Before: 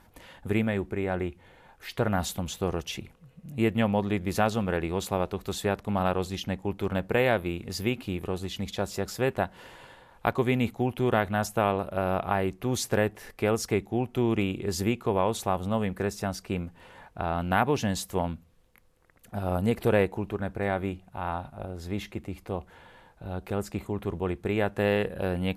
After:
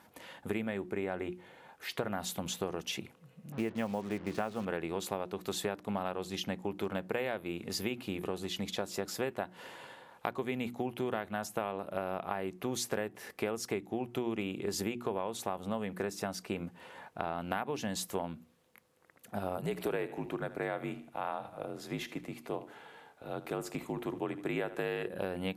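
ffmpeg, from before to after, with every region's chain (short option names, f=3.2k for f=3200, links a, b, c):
-filter_complex "[0:a]asettb=1/sr,asplit=3[a][b][c];[a]atrim=end=3.524[d];[b]atrim=start=3.52:end=4.65,asetpts=PTS-STARTPTS,afade=t=in:d=0.004:c=qsin,afade=t=out:st=1.126:d=0.004:c=qsin,lowpass=2.4k,acrusher=bits=6:mix=0:aa=0.5[e];[c]atrim=start=4.646[f];[d][e]acrossfade=d=0.004:c1=hsin:c2=qsin[g];[g][f]acrossfade=d=0.004:c1=qsin:c2=hsin,asettb=1/sr,asplit=3[h][i][j];[h]atrim=end=19.574[k];[i]atrim=start=19.57:end=25.07,asetpts=PTS-STARTPTS,afade=t=in:d=0.004:c=qsin,afade=t=out:st=5.496:d=0.004:c=qsin,equalizer=f=68:t=o:w=2.4:g=-7,afreqshift=-51,aecho=1:1:76|152|228:0.15|0.0598|0.0239,atrim=end_sample=242550[l];[j]atrim=start=25.066[m];[k][l]acrossfade=d=0.004:c1=hsin:c2=qsin[n];[n][m]acrossfade=d=0.004:c1=qsin:c2=hsin,highpass=170,bandreject=f=60:t=h:w=6,bandreject=f=120:t=h:w=6,bandreject=f=180:t=h:w=6,bandreject=f=240:t=h:w=6,bandreject=f=300:t=h:w=6,bandreject=f=360:t=h:w=6,acompressor=threshold=-31dB:ratio=6"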